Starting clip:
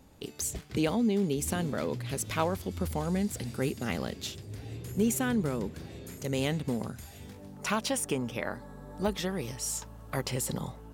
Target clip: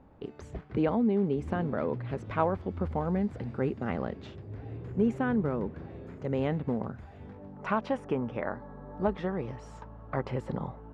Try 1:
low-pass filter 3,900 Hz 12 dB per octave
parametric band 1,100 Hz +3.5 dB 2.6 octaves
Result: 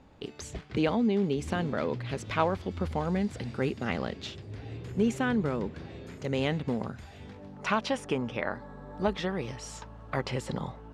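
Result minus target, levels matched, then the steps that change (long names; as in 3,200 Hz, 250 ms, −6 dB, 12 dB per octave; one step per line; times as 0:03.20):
4,000 Hz band +13.0 dB
change: low-pass filter 1,400 Hz 12 dB per octave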